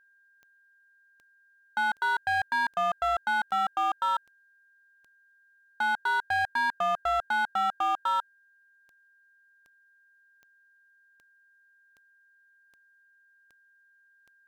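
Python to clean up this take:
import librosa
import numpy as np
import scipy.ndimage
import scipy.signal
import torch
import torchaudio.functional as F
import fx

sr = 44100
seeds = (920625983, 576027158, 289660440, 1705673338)

y = fx.fix_declip(x, sr, threshold_db=-22.5)
y = fx.fix_declick_ar(y, sr, threshold=10.0)
y = fx.notch(y, sr, hz=1600.0, q=30.0)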